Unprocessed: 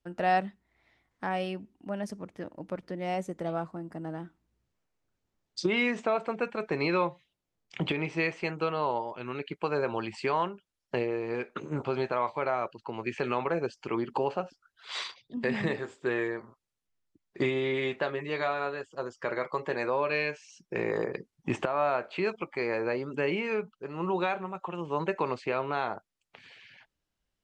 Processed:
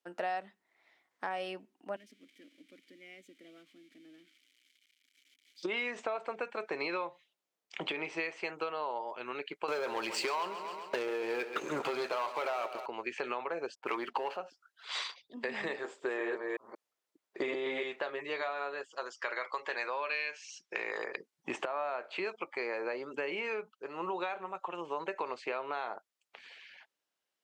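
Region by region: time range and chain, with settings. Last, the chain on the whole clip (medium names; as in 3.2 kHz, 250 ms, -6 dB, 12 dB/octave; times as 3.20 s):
1.96–5.63 s: zero-crossing glitches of -32 dBFS + vowel filter i
9.68–12.86 s: treble shelf 4.2 kHz +9.5 dB + waveshaping leveller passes 3 + feedback delay 133 ms, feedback 53%, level -13.5 dB
13.75–14.37 s: level-controlled noise filter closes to 660 Hz, open at -27 dBFS + peaking EQ 2 kHz +8.5 dB 2.7 oct + waveshaping leveller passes 1
15.84–17.83 s: chunks repeated in reverse 182 ms, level -1.5 dB + peaking EQ 560 Hz +5.5 dB 2.2 oct
18.89–21.16 s: low-pass 6.7 kHz + tilt shelf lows -7.5 dB, about 870 Hz
whole clip: high-pass 440 Hz 12 dB/octave; compression, threshold -32 dBFS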